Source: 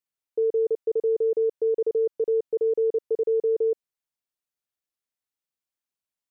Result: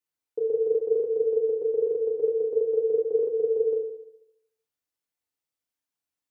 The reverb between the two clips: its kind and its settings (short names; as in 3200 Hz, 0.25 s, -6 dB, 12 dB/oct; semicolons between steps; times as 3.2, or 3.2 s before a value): FDN reverb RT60 0.82 s, low-frequency decay 0.95×, high-frequency decay 0.6×, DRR 0 dB; gain -1.5 dB